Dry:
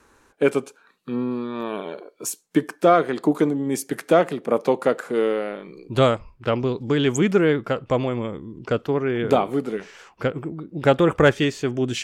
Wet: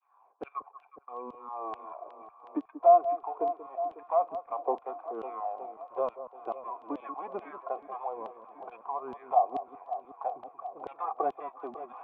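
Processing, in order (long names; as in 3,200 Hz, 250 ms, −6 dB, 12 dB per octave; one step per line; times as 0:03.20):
gap after every zero crossing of 0.14 ms
downward expander −53 dBFS
phase shifter 0.21 Hz, delay 3.7 ms, feedback 52%
formant resonators in series a
auto-filter high-pass saw down 2.3 Hz 230–3,200 Hz
delay that swaps between a low-pass and a high-pass 183 ms, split 1,300 Hz, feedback 81%, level −13.5 dB
multiband upward and downward compressor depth 40%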